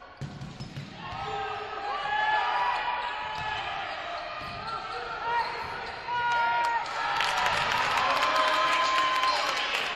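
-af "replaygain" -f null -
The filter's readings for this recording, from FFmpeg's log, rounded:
track_gain = +8.7 dB
track_peak = 0.211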